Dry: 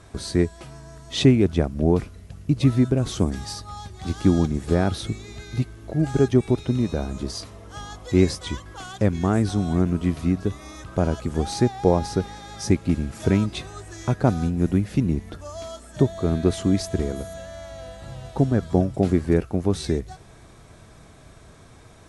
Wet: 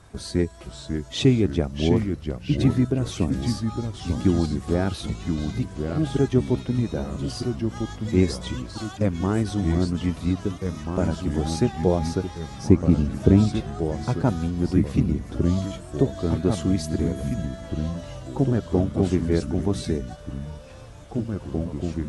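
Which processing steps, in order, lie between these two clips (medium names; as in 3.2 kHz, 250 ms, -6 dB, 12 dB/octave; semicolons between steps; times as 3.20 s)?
coarse spectral quantiser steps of 15 dB; 12.58–14.08 s: tilt shelf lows +6.5 dB, about 1.1 kHz; ever faster or slower copies 504 ms, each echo -2 st, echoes 3, each echo -6 dB; trim -2 dB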